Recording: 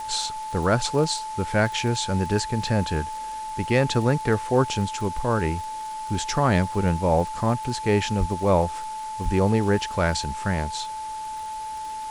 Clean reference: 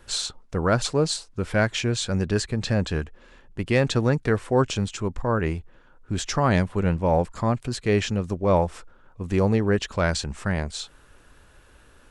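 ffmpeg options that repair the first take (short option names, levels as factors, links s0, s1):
-filter_complex "[0:a]adeclick=t=4,bandreject=f=870:w=30,asplit=3[s0][s1][s2];[s0]afade=t=out:st=8.19:d=0.02[s3];[s1]highpass=f=140:w=0.5412,highpass=f=140:w=1.3066,afade=t=in:st=8.19:d=0.02,afade=t=out:st=8.31:d=0.02[s4];[s2]afade=t=in:st=8.31:d=0.02[s5];[s3][s4][s5]amix=inputs=3:normalize=0,asplit=3[s6][s7][s8];[s6]afade=t=out:st=9.24:d=0.02[s9];[s7]highpass=f=140:w=0.5412,highpass=f=140:w=1.3066,afade=t=in:st=9.24:d=0.02,afade=t=out:st=9.36:d=0.02[s10];[s8]afade=t=in:st=9.36:d=0.02[s11];[s9][s10][s11]amix=inputs=3:normalize=0,afwtdn=0.0063"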